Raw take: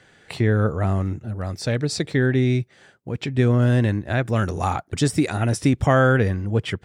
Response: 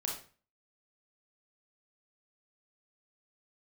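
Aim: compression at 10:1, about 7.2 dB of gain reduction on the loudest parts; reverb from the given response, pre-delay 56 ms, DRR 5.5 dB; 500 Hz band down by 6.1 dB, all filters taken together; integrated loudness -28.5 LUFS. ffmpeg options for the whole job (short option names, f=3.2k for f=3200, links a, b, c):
-filter_complex "[0:a]equalizer=f=500:t=o:g=-8,acompressor=threshold=-22dB:ratio=10,asplit=2[a][b];[1:a]atrim=start_sample=2205,adelay=56[c];[b][c]afir=irnorm=-1:irlink=0,volume=-7.5dB[d];[a][d]amix=inputs=2:normalize=0,volume=-1.5dB"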